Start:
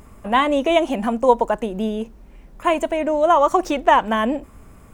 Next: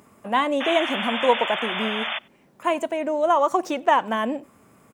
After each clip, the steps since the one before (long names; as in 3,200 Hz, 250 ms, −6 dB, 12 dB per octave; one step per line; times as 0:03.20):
sound drawn into the spectrogram noise, 0:00.60–0:02.19, 550–3,600 Hz −24 dBFS
Bessel high-pass filter 170 Hz, order 4
slap from a distant wall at 16 metres, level −27 dB
level −4 dB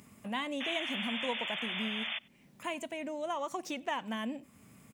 flat-topped bell 710 Hz −9.5 dB 2.6 octaves
downward compressor 1.5 to 1, threshold −46 dBFS, peak gain reduction 9 dB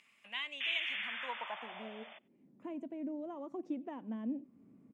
band-pass filter sweep 2,600 Hz → 290 Hz, 0:00.79–0:02.46
level +3 dB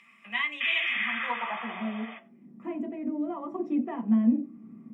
convolution reverb RT60 0.40 s, pre-delay 3 ms, DRR 1.5 dB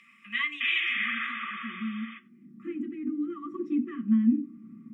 linear-phase brick-wall band-stop 380–1,100 Hz